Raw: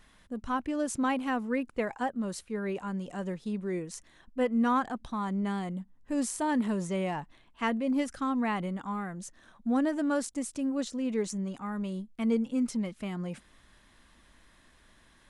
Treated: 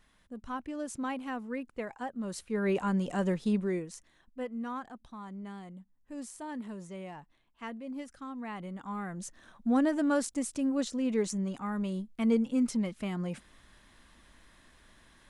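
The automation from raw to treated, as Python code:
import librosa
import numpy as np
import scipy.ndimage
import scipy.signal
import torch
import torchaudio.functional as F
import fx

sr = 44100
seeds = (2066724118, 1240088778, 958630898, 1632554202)

y = fx.gain(x, sr, db=fx.line((2.06, -6.5), (2.74, 5.5), (3.55, 5.5), (3.96, -5.0), (4.66, -11.5), (8.38, -11.5), (9.22, 1.0)))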